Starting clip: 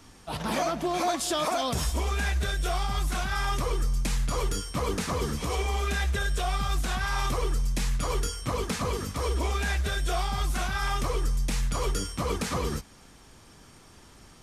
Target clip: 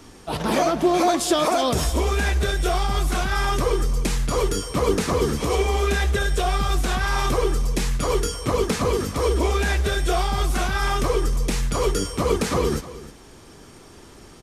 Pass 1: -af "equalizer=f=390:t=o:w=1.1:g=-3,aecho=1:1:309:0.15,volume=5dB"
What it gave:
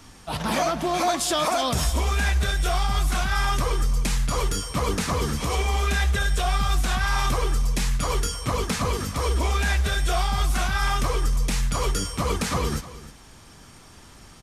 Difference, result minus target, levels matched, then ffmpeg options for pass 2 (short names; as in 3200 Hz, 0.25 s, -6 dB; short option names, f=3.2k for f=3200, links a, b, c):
500 Hz band -5.0 dB
-af "equalizer=f=390:t=o:w=1.1:g=7,aecho=1:1:309:0.15,volume=5dB"